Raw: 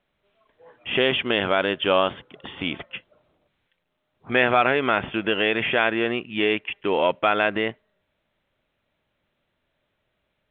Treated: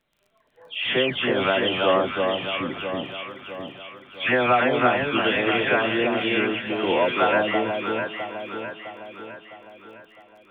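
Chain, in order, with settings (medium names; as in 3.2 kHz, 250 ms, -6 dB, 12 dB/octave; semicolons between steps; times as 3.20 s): delay that grows with frequency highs early, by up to 378 ms; crackle 21 per s -48 dBFS; echo whose repeats swap between lows and highs 329 ms, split 1.1 kHz, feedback 70%, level -3 dB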